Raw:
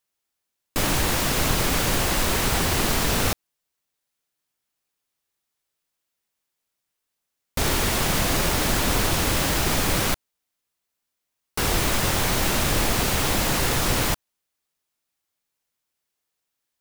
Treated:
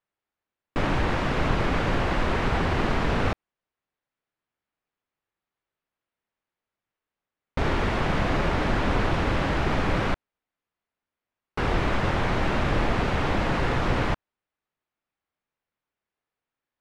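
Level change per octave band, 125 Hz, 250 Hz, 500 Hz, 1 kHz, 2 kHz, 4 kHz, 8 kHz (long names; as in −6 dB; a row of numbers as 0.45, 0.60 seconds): 0.0, 0.0, 0.0, −0.5, −2.5, −10.0, −23.0 decibels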